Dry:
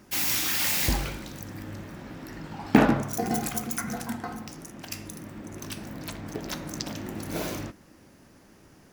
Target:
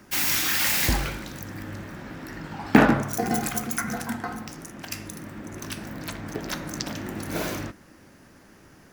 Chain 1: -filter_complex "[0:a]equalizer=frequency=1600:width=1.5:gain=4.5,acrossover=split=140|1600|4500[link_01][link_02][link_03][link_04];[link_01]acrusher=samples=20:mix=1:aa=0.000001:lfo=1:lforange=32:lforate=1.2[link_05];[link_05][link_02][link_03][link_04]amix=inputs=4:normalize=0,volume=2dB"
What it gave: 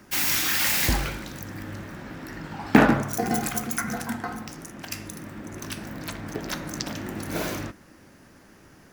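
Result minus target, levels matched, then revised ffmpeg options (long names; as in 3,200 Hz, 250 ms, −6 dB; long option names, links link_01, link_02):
sample-and-hold swept by an LFO: distortion +11 dB
-filter_complex "[0:a]equalizer=frequency=1600:width=1.5:gain=4.5,acrossover=split=140|1600|4500[link_01][link_02][link_03][link_04];[link_01]acrusher=samples=6:mix=1:aa=0.000001:lfo=1:lforange=9.6:lforate=1.2[link_05];[link_05][link_02][link_03][link_04]amix=inputs=4:normalize=0,volume=2dB"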